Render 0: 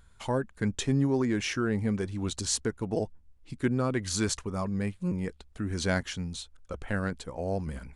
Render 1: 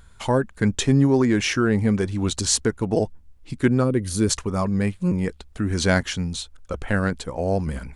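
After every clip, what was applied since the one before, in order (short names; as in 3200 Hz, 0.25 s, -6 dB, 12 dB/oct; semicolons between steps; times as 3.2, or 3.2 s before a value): spectral gain 3.84–4.3, 590–8400 Hz -10 dB; gain +8.5 dB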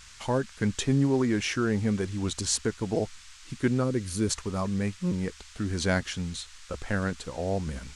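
band noise 1100–7900 Hz -45 dBFS; gain -6.5 dB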